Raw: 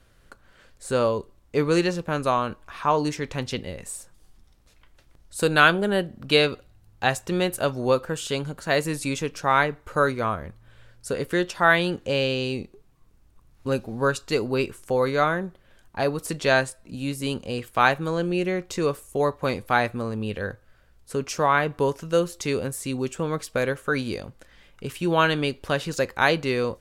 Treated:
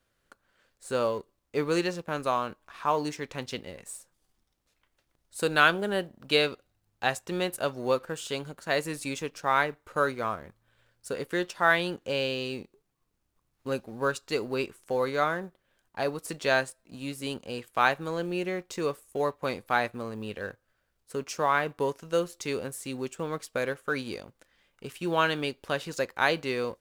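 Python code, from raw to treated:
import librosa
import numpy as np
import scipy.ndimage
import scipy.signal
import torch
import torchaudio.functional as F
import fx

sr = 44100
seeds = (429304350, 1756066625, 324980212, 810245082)

y = fx.law_mismatch(x, sr, coded='A')
y = fx.low_shelf(y, sr, hz=130.0, db=-11.0)
y = F.gain(torch.from_numpy(y), -4.0).numpy()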